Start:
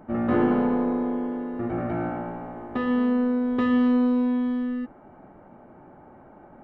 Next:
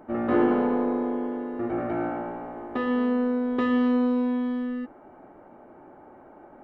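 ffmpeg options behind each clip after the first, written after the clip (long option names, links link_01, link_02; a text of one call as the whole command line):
ffmpeg -i in.wav -af "lowshelf=frequency=240:width_type=q:width=1.5:gain=-6" out.wav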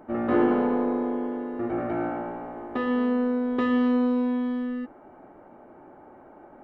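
ffmpeg -i in.wav -af anull out.wav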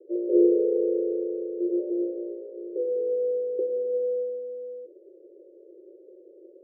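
ffmpeg -i in.wav -af "asuperpass=centerf=430:order=12:qfactor=2,volume=5dB" out.wav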